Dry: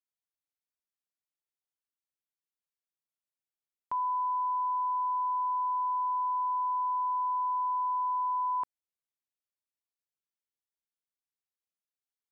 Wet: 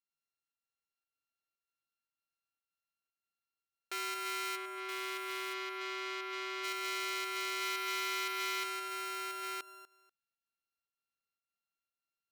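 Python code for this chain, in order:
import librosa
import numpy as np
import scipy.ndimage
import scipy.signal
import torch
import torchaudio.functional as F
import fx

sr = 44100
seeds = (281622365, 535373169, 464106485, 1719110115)

y = np.r_[np.sort(x[:len(x) // 32 * 32].reshape(-1, 32), axis=1).ravel(), x[len(x) // 32 * 32:]]
y = fx.lowpass(y, sr, hz=fx.line((4.55, 1100.0), (6.63, 1000.0)), slope=6, at=(4.55, 6.63), fade=0.02)
y = y + 10.0 ** (-4.0 / 20.0) * np.pad(y, (int(973 * sr / 1000.0), 0))[:len(y)]
y = fx.volume_shaper(y, sr, bpm=116, per_beat=1, depth_db=-5, release_ms=118.0, shape='slow start')
y = fx.echo_feedback(y, sr, ms=243, feedback_pct=19, wet_db=-18)
y = fx.transformer_sat(y, sr, knee_hz=3700.0)
y = y * 10.0 ** (-2.5 / 20.0)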